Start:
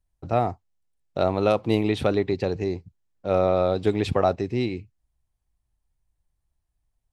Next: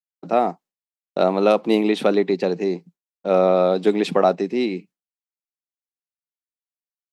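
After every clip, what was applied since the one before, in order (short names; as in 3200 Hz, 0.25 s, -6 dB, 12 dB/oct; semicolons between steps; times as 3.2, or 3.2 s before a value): elliptic high-pass 170 Hz, stop band 40 dB; expander -47 dBFS; gain +5 dB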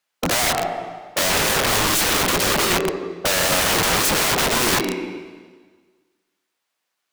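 overdrive pedal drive 32 dB, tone 2700 Hz, clips at -4.5 dBFS; plate-style reverb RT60 1.5 s, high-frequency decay 0.95×, pre-delay 0.11 s, DRR 10 dB; wrapped overs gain 14 dB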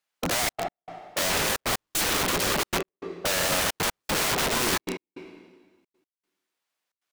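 step gate "xxxxx.x..xx" 154 bpm -60 dB; gain -6 dB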